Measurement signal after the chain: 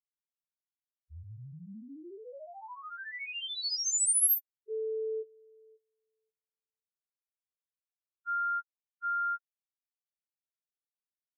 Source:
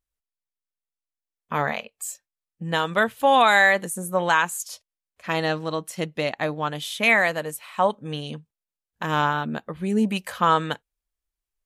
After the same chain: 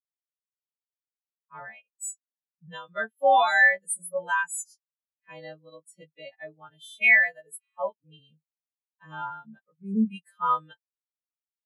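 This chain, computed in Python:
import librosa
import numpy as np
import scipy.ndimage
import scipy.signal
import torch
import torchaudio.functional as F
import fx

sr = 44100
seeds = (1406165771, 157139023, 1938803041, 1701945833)

y = fx.freq_snap(x, sr, grid_st=2)
y = fx.spectral_expand(y, sr, expansion=2.5)
y = F.gain(torch.from_numpy(y), -3.0).numpy()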